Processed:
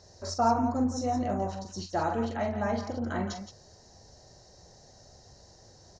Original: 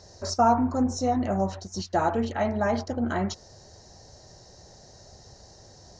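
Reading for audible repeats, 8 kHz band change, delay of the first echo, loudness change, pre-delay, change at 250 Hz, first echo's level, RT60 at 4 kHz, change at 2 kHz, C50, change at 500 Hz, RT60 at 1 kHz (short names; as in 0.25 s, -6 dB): 2, -4.5 dB, 44 ms, -4.0 dB, none, -4.0 dB, -8.0 dB, none, -4.5 dB, none, -4.5 dB, none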